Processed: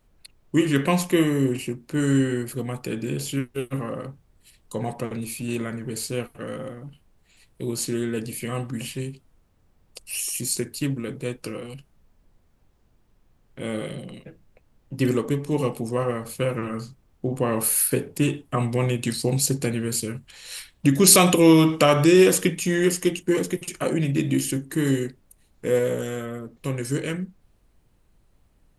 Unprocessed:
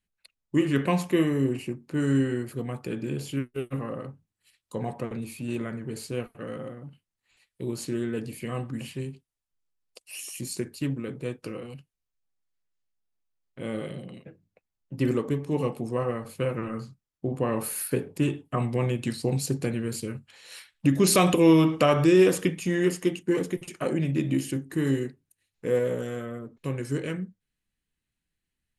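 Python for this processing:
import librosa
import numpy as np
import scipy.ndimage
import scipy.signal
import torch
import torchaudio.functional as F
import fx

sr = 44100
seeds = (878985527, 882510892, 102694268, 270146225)

y = fx.high_shelf(x, sr, hz=3700.0, db=9.0)
y = fx.dmg_noise_colour(y, sr, seeds[0], colour='brown', level_db=-62.0)
y = y * librosa.db_to_amplitude(3.0)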